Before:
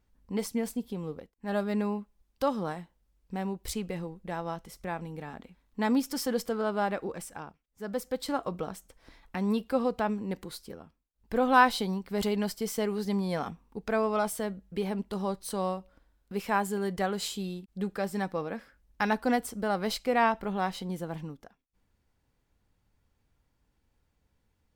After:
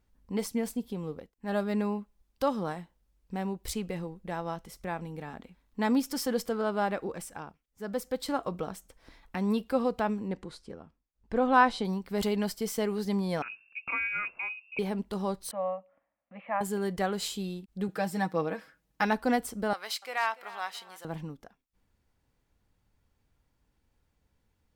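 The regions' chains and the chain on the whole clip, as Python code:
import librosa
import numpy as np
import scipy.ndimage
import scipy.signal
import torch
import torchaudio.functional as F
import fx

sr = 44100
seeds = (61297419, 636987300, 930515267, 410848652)

y = fx.chain(x, sr, fx.lowpass(hz=9200.0, slope=24),
    fx.high_shelf(hz=2600.0, db=-7.5), at=(10.28, 11.85))
y = fx.chain(y, sr, fx.fixed_phaser(hz=1900.0, stages=4),
    fx.freq_invert(carrier_hz=2700), at=(13.42, 14.79))
y = fx.chain(y, sr, fx.cabinet(low_hz=320.0, low_slope=12, high_hz=2100.0, hz=(390.0, 570.0, 930.0, 1500.0), db=(-4, 9, -8, 9)),
    fx.fixed_phaser(hz=1500.0, stages=6), at=(15.51, 16.61))
y = fx.chain(y, sr, fx.highpass(hz=100.0, slope=12),
    fx.comb(ms=6.3, depth=0.7), at=(17.88, 19.04))
y = fx.chain(y, sr, fx.highpass(hz=1100.0, slope=12),
    fx.clip_hard(threshold_db=-19.0),
    fx.echo_feedback(ms=291, feedback_pct=29, wet_db=-17.0), at=(19.73, 21.05))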